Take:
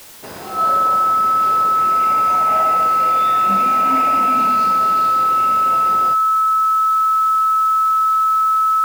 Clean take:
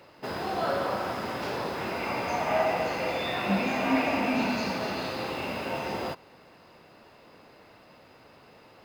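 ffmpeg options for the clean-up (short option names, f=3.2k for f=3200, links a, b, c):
-af "bandreject=f=1.3k:w=30,afwtdn=0.01"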